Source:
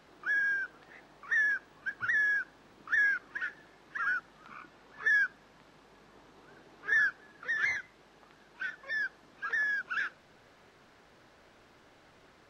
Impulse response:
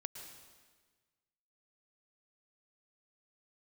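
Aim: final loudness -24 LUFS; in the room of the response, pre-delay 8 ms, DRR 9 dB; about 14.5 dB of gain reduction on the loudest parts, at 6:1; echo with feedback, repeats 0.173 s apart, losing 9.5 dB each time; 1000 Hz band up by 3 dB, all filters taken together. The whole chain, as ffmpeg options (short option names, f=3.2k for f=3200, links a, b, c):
-filter_complex "[0:a]equalizer=f=1k:t=o:g=5,acompressor=threshold=-39dB:ratio=6,aecho=1:1:173|346|519|692:0.335|0.111|0.0365|0.012,asplit=2[a][b];[1:a]atrim=start_sample=2205,adelay=8[c];[b][c]afir=irnorm=-1:irlink=0,volume=-6.5dB[d];[a][d]amix=inputs=2:normalize=0,volume=17dB"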